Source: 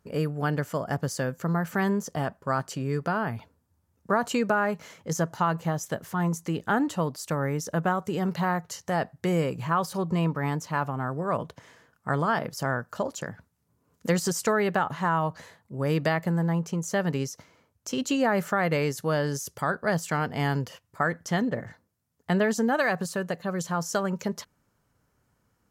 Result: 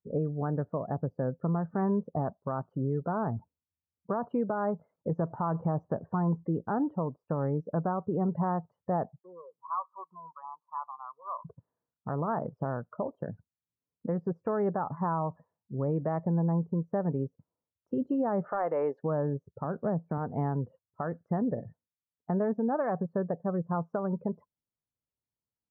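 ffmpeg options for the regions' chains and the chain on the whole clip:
ffmpeg -i in.wav -filter_complex "[0:a]asettb=1/sr,asplit=3[link_01][link_02][link_03];[link_01]atrim=end=4.964[link_04];[link_02]atrim=start=4.96:end=6.47,asetpts=PTS-STARTPTS,afade=type=in:duration=0.004:curve=qsin,afade=type=out:start_time=1.506:duration=0.004:curve=qsin,acontrast=76,agate=range=-33dB:threshold=-42dB:ratio=3:release=100:detection=peak[link_05];[link_03]atrim=start=6.466[link_06];[link_04][link_05]acrossfade=duration=0.004:curve1=hsin:curve2=qsin[link_07];[link_07][link_06]acrossfade=duration=0.004:curve1=qsin:curve2=hsin,asettb=1/sr,asplit=3[link_08][link_09][link_10];[link_08]atrim=end=9.194[link_11];[link_09]atrim=start=9.19:end=11.45,asetpts=PTS-STARTPTS,afade=type=in:duration=0.004:curve=qsin,afade=type=out:start_time=2.256:duration=0.004:curve=qsin,asoftclip=type=hard:threshold=-20dB,bandpass=frequency=1100:width_type=q:width=4.7[link_12];[link_10]atrim=start=11.446[link_13];[link_11][link_12]acrossfade=duration=0.004:curve1=hsin:curve2=qsin[link_14];[link_14][link_13]acrossfade=duration=0.004:curve1=qsin:curve2=hsin,asettb=1/sr,asplit=3[link_15][link_16][link_17];[link_15]atrim=end=18.444[link_18];[link_16]atrim=start=18.44:end=19.04,asetpts=PTS-STARTPTS,afade=type=in:duration=0.004:curve=qsin,afade=type=out:start_time=0.596:duration=0.004:curve=qsin,highpass=500,acontrast=80,asoftclip=type=hard:threshold=-12dB[link_19];[link_17]atrim=start=19.036[link_20];[link_18][link_19]acrossfade=duration=0.004:curve1=hsin:curve2=qsin[link_21];[link_21][link_20]acrossfade=duration=0.004:curve1=qsin:curve2=hsin,asettb=1/sr,asplit=3[link_22][link_23][link_24];[link_22]atrim=end=19.644[link_25];[link_23]atrim=start=19.64:end=20.18,asetpts=PTS-STARTPTS,afade=type=in:duration=0.004:curve=qsin,afade=type=out:start_time=0.536:duration=0.004:curve=qsin,highpass=180,aemphasis=mode=reproduction:type=riaa[link_26];[link_24]atrim=start=20.176[link_27];[link_25][link_26]acrossfade=duration=0.004:curve1=hsin:curve2=qsin[link_28];[link_28][link_27]acrossfade=duration=0.004:curve1=qsin:curve2=hsin,afftdn=noise_reduction=29:noise_floor=-35,lowpass=frequency=1100:width=0.5412,lowpass=frequency=1100:width=1.3066,alimiter=limit=-22.5dB:level=0:latency=1:release=286,volume=1dB" out.wav

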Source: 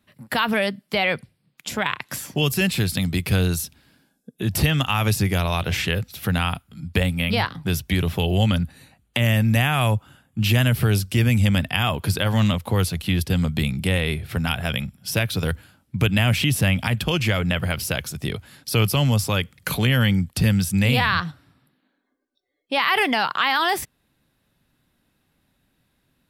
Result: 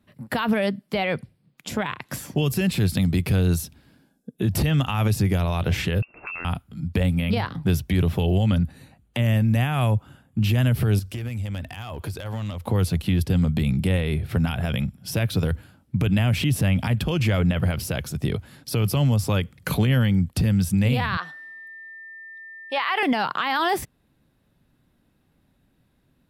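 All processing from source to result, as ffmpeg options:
ffmpeg -i in.wav -filter_complex "[0:a]asettb=1/sr,asplit=3[link_01][link_02][link_03];[link_01]atrim=end=6.024[link_04];[link_02]atrim=start=6.02:end=6.45,asetpts=PTS-STARTPTS,afade=type=in:duration=0.004:curve=qsin,afade=type=out:start_time=0.426:duration=0.004:curve=qsin,lowpass=frequency=2400:width_type=q:width=0.5098,lowpass=frequency=2400:width_type=q:width=0.6013,lowpass=frequency=2400:width_type=q:width=0.9,lowpass=frequency=2400:width_type=q:width=2.563,afreqshift=-2800,acompressor=threshold=-28dB:ratio=5:attack=3.2:release=140:knee=1:detection=peak[link_05];[link_03]atrim=start=6.446[link_06];[link_04][link_05]acrossfade=duration=0.004:curve1=hsin:curve2=qsin[link_07];[link_07][link_06]acrossfade=duration=0.004:curve1=qsin:curve2=hsin,asettb=1/sr,asplit=3[link_08][link_09][link_10];[link_08]atrim=end=10.994[link_11];[link_09]atrim=start=10.99:end=12.64,asetpts=PTS-STARTPTS,afade=type=in:duration=0.004:curve=qsin,afade=type=out:start_time=1.646:duration=0.004:curve=qsin,equalizer=frequency=180:width_type=o:width=1.2:gain=-9,acompressor=threshold=-29dB:ratio=10:attack=3.2:release=140:knee=1:detection=peak,asoftclip=type=hard:threshold=-27dB[link_12];[link_10]atrim=start=12.636[link_13];[link_11][link_12]acrossfade=duration=0.004:curve1=hsin:curve2=qsin[link_14];[link_14][link_13]acrossfade=duration=0.004:curve1=qsin:curve2=hsin,asettb=1/sr,asplit=3[link_15][link_16][link_17];[link_15]atrim=end=21.174[link_18];[link_16]atrim=start=21.17:end=23.03,asetpts=PTS-STARTPTS,afade=type=in:duration=0.004:curve=qsin,afade=type=out:start_time=1.856:duration=0.004:curve=qsin,highpass=610,aeval=exprs='val(0)+0.0158*sin(2*PI*1800*n/s)':channel_layout=same,acrossover=split=5300[link_19][link_20];[link_20]acompressor=threshold=-48dB:ratio=4:attack=1:release=60[link_21];[link_19][link_21]amix=inputs=2:normalize=0[link_22];[link_17]atrim=start=23.026[link_23];[link_18][link_22]acrossfade=duration=0.004:curve1=hsin:curve2=qsin[link_24];[link_24][link_23]acrossfade=duration=0.004:curve1=qsin:curve2=hsin,tiltshelf=frequency=970:gain=4.5,alimiter=limit=-13.5dB:level=0:latency=1:release=53" out.wav

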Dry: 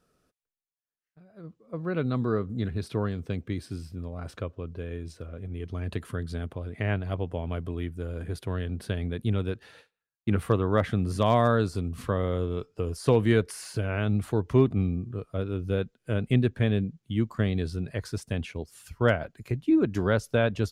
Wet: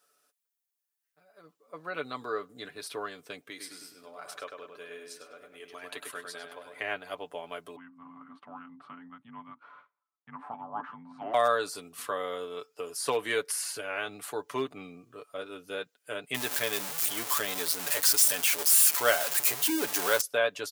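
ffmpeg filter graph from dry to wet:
ffmpeg -i in.wav -filter_complex "[0:a]asettb=1/sr,asplit=3[link_01][link_02][link_03];[link_01]atrim=end=3.504[link_04];[link_02]atrim=start=3.5:end=6.81,asetpts=PTS-STARTPTS,afade=type=in:duration=0.004:curve=qsin,afade=type=out:start_time=3.306:duration=0.004:curve=qsin,lowshelf=frequency=220:gain=-10.5,asplit=2[link_05][link_06];[link_06]adelay=101,lowpass=frequency=2900:poles=1,volume=-4dB,asplit=2[link_07][link_08];[link_08]adelay=101,lowpass=frequency=2900:poles=1,volume=0.47,asplit=2[link_09][link_10];[link_10]adelay=101,lowpass=frequency=2900:poles=1,volume=0.47,asplit=2[link_11][link_12];[link_12]adelay=101,lowpass=frequency=2900:poles=1,volume=0.47,asplit=2[link_13][link_14];[link_14]adelay=101,lowpass=frequency=2900:poles=1,volume=0.47,asplit=2[link_15][link_16];[link_16]adelay=101,lowpass=frequency=2900:poles=1,volume=0.47[link_17];[link_05][link_07][link_09][link_11][link_13][link_15][link_17]amix=inputs=7:normalize=0,atrim=end_sample=145971[link_18];[link_03]atrim=start=6.806[link_19];[link_04][link_18]acrossfade=duration=0.004:curve1=hsin:curve2=qsin[link_20];[link_20][link_19]acrossfade=duration=0.004:curve1=qsin:curve2=hsin,asettb=1/sr,asplit=3[link_21][link_22][link_23];[link_21]atrim=end=7.764[link_24];[link_22]atrim=start=7.76:end=11.34,asetpts=PTS-STARTPTS,afade=type=in:duration=0.004:curve=qsin,afade=type=out:start_time=3.576:duration=0.004:curve=qsin,acompressor=threshold=-39dB:ratio=1.5:attack=3.2:release=140:knee=1:detection=peak,afreqshift=-350,lowpass=frequency=1100:width_type=q:width=1.6[link_25];[link_23]atrim=start=11.336[link_26];[link_24][link_25]acrossfade=duration=0.004:curve1=hsin:curve2=qsin[link_27];[link_27][link_26]acrossfade=duration=0.004:curve1=qsin:curve2=hsin,asettb=1/sr,asplit=3[link_28][link_29][link_30];[link_28]atrim=end=16.344[link_31];[link_29]atrim=start=16.34:end=20.21,asetpts=PTS-STARTPTS,afade=type=in:duration=0.004:curve=qsin,afade=type=out:start_time=3.866:duration=0.004:curve=qsin,aeval=exprs='val(0)+0.5*0.0355*sgn(val(0))':channel_layout=same,highshelf=frequency=4700:gain=6.5[link_32];[link_30]atrim=start=20.206[link_33];[link_31][link_32]acrossfade=duration=0.004:curve1=hsin:curve2=qsin[link_34];[link_34][link_33]acrossfade=duration=0.004:curve1=qsin:curve2=hsin,highpass=670,highshelf=frequency=7000:gain=11.5,aecho=1:1:6.9:0.55" out.wav

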